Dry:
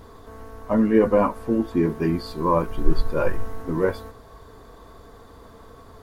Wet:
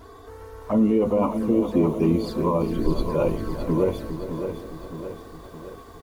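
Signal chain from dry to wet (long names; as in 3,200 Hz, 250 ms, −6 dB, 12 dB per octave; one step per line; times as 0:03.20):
high-pass filter 60 Hz 6 dB per octave
brickwall limiter −14.5 dBFS, peak gain reduction 8 dB
flanger swept by the level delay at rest 3.3 ms, full sweep at −23 dBFS
repeating echo 404 ms, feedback 44%, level −13 dB
feedback echo at a low word length 615 ms, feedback 55%, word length 9 bits, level −8.5 dB
level +3.5 dB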